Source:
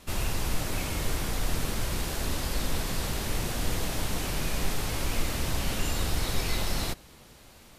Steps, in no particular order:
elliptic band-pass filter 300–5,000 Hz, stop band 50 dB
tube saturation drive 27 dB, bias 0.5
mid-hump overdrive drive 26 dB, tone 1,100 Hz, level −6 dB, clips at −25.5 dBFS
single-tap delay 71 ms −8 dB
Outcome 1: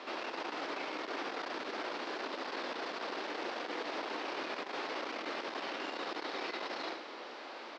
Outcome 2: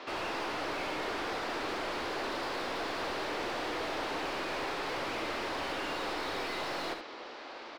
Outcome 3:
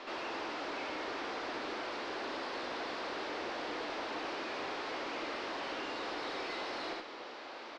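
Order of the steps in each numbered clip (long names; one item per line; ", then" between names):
mid-hump overdrive, then single-tap delay, then tube saturation, then elliptic band-pass filter
elliptic band-pass filter, then tube saturation, then mid-hump overdrive, then single-tap delay
single-tap delay, then mid-hump overdrive, then elliptic band-pass filter, then tube saturation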